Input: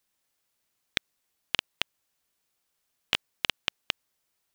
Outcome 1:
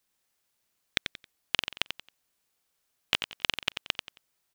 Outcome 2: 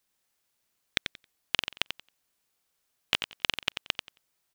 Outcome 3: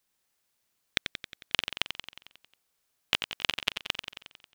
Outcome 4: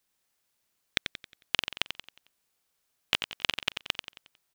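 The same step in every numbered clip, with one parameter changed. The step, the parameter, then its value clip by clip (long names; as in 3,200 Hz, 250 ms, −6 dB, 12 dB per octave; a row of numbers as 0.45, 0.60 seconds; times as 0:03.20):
repeating echo, feedback: 28, 17, 62, 42%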